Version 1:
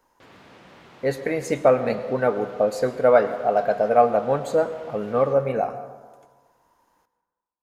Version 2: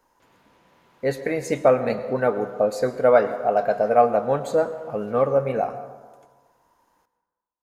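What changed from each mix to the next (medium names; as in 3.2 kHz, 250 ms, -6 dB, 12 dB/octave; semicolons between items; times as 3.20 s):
background -11.5 dB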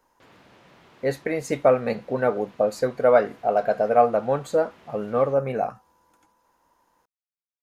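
background +10.0 dB; reverb: off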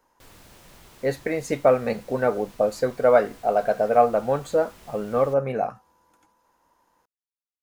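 background: remove band-pass 140–3000 Hz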